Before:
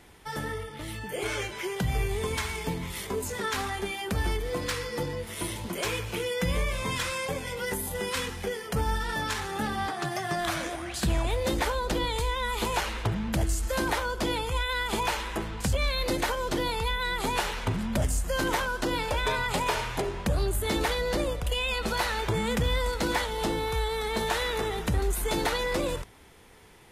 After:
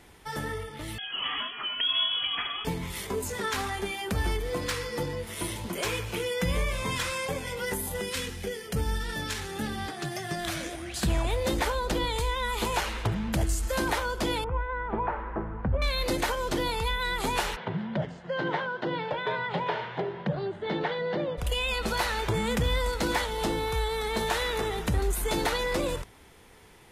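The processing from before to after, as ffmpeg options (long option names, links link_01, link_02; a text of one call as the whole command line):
ffmpeg -i in.wav -filter_complex "[0:a]asettb=1/sr,asplit=3[link_01][link_02][link_03];[link_01]atrim=end=0.984[link_04];[link_02]atrim=start=0.98:end=2.65,asetpts=PTS-STARTPTS,afade=type=in:duration=0.004:curve=qsin,afade=type=out:start_time=1.666:duration=0.004:curve=qsin,lowpass=frequency=2900:width_type=q:width=0.5098,lowpass=frequency=2900:width_type=q:width=0.6013,lowpass=frequency=2900:width_type=q:width=0.9,lowpass=frequency=2900:width_type=q:width=2.563,afreqshift=-3400[link_05];[link_03]atrim=start=2.646[link_06];[link_04][link_05]acrossfade=duration=0.004:curve1=hsin:curve2=qsin[link_07];[link_07][link_06]acrossfade=duration=0.004:curve1=qsin:curve2=hsin,asettb=1/sr,asplit=3[link_08][link_09][link_10];[link_08]atrim=end=8.014[link_11];[link_09]atrim=start=8.01:end=10.96,asetpts=PTS-STARTPTS,afade=type=in:duration=0.004:curve=qsin,afade=type=out:start_time=2.946:duration=0.004:curve=qsin,equalizer=frequency=1000:width=1.1:gain=-9[link_12];[link_10]atrim=start=10.956[link_13];[link_11][link_12]acrossfade=duration=0.004:curve1=hsin:curve2=qsin[link_14];[link_14][link_13]acrossfade=duration=0.004:curve1=qsin:curve2=hsin,asettb=1/sr,asplit=3[link_15][link_16][link_17];[link_15]atrim=end=14.444[link_18];[link_16]atrim=start=14.44:end=15.82,asetpts=PTS-STARTPTS,afade=type=in:duration=0.004:curve=qsin,afade=type=out:start_time=1.376:duration=0.004:curve=qsin,lowpass=frequency=1500:width=0.5412,lowpass=frequency=1500:width=1.3066[link_19];[link_17]atrim=start=15.816[link_20];[link_18][link_19]acrossfade=duration=0.004:curve1=hsin:curve2=qsin[link_21];[link_21][link_20]acrossfade=duration=0.004:curve1=qsin:curve2=hsin,asplit=3[link_22][link_23][link_24];[link_22]afade=type=out:start_time=17.55:duration=0.02[link_25];[link_23]highpass=frequency=150:width=0.5412,highpass=frequency=150:width=1.3066,equalizer=frequency=150:width_type=q:width=4:gain=9,equalizer=frequency=260:width_type=q:width=4:gain=-9,equalizer=frequency=1200:width_type=q:width=4:gain=-6,equalizer=frequency=2500:width_type=q:width=4:gain=-9,lowpass=frequency=3200:width=0.5412,lowpass=frequency=3200:width=1.3066,afade=type=in:start_time=17.55:duration=0.02,afade=type=out:start_time=21.37:duration=0.02[link_26];[link_24]afade=type=in:start_time=21.37:duration=0.02[link_27];[link_25][link_26][link_27]amix=inputs=3:normalize=0" out.wav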